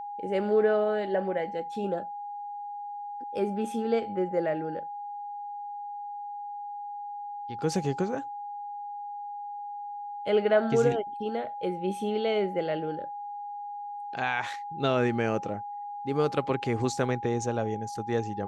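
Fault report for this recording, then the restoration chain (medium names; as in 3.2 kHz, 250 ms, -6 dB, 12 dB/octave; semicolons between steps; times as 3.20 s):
whine 820 Hz -35 dBFS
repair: band-stop 820 Hz, Q 30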